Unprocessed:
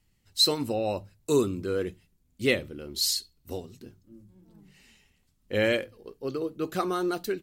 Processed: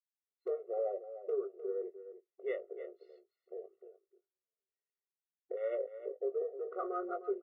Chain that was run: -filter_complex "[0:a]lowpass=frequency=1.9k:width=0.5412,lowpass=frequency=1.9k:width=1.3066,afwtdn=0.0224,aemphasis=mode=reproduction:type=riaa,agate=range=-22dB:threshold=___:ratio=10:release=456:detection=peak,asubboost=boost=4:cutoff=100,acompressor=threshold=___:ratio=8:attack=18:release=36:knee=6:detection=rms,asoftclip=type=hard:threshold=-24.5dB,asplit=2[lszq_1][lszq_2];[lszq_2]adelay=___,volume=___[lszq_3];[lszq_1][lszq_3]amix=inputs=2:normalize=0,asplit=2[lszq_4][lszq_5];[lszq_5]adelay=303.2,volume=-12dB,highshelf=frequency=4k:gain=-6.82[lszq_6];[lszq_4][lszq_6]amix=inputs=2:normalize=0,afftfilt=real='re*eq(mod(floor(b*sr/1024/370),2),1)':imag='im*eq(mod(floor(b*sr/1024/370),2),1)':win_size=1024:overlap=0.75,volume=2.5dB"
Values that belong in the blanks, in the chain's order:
-47dB, -34dB, 20, -9dB